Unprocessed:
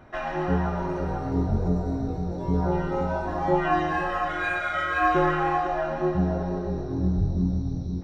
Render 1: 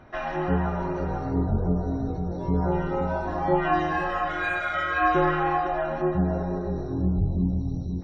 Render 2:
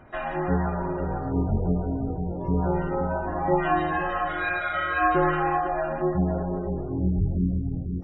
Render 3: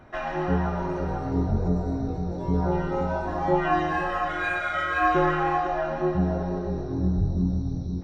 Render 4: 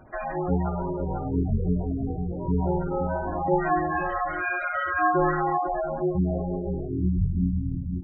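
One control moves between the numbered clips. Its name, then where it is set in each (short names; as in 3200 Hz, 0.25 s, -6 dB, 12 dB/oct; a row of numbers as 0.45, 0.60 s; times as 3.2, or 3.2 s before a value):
spectral gate, under each frame's peak: -45, -30, -60, -15 dB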